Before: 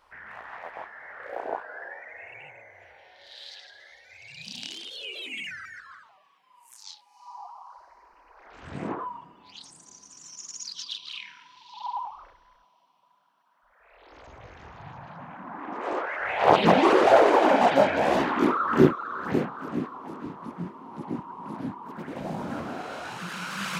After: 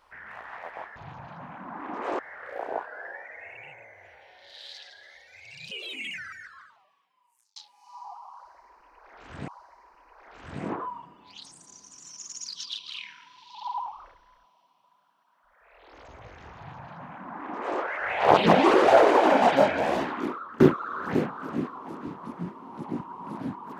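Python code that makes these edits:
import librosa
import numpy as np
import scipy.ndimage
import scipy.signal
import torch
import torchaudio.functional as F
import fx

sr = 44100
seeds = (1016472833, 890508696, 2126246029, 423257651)

y = fx.edit(x, sr, fx.cut(start_s=4.48, length_s=0.56),
    fx.fade_out_span(start_s=5.62, length_s=1.27),
    fx.repeat(start_s=7.67, length_s=1.14, count=2),
    fx.duplicate(start_s=14.75, length_s=1.23, to_s=0.96),
    fx.fade_out_to(start_s=17.76, length_s=1.03, floor_db=-22.5), tone=tone)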